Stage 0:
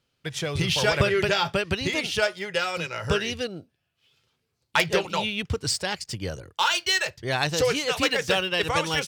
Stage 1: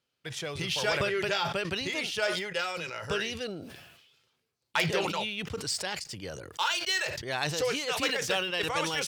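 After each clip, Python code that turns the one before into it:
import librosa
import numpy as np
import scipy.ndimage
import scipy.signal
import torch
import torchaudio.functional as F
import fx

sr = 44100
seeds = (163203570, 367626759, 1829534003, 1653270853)

y = fx.low_shelf(x, sr, hz=140.0, db=-12.0)
y = fx.sustainer(y, sr, db_per_s=47.0)
y = F.gain(torch.from_numpy(y), -6.0).numpy()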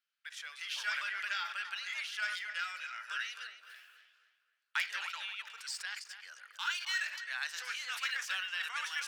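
y = fx.ladder_highpass(x, sr, hz=1300.0, resonance_pct=50)
y = fx.echo_filtered(y, sr, ms=262, feedback_pct=43, hz=3000.0, wet_db=-9.5)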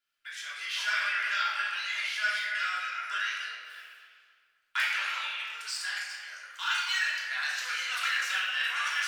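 y = fx.room_shoebox(x, sr, seeds[0], volume_m3=740.0, walls='mixed', distance_m=3.1)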